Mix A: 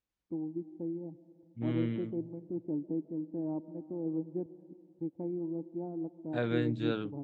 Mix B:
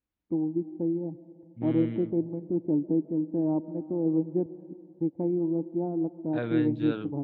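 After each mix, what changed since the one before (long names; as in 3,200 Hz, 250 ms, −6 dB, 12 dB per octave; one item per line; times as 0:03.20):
first voice +9.0 dB
master: add low-pass filter 3,600 Hz 12 dB per octave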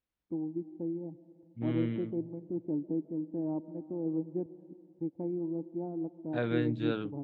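first voice −7.5 dB
master: remove high-frequency loss of the air 75 metres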